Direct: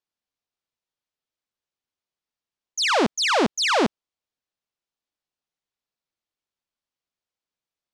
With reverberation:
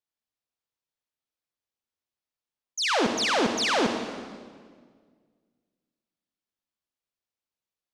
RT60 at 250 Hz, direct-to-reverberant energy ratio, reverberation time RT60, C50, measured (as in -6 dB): 2.2 s, 5.0 dB, 1.8 s, 6.0 dB